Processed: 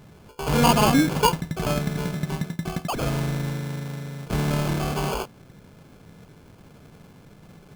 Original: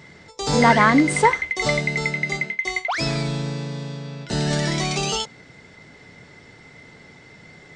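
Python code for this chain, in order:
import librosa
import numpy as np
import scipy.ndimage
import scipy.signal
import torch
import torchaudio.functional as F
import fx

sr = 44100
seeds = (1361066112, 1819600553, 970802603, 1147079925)

y = fx.low_shelf(x, sr, hz=86.0, db=11.5)
y = fx.sample_hold(y, sr, seeds[0], rate_hz=1900.0, jitter_pct=0)
y = F.gain(torch.from_numpy(y), -3.5).numpy()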